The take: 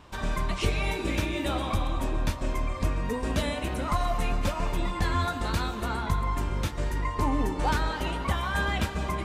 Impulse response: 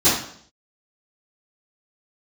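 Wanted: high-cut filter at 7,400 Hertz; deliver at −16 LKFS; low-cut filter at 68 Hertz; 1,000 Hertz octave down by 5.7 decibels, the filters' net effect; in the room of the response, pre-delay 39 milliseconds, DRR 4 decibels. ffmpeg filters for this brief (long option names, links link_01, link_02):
-filter_complex "[0:a]highpass=68,lowpass=7400,equalizer=frequency=1000:width_type=o:gain=-7,asplit=2[link_01][link_02];[1:a]atrim=start_sample=2205,adelay=39[link_03];[link_02][link_03]afir=irnorm=-1:irlink=0,volume=-24dB[link_04];[link_01][link_04]amix=inputs=2:normalize=0,volume=13.5dB"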